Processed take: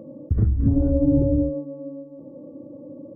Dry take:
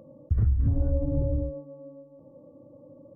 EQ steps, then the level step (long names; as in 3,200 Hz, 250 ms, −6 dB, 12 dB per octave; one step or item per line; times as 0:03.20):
parametric band 300 Hz +14 dB 2 octaves
0.0 dB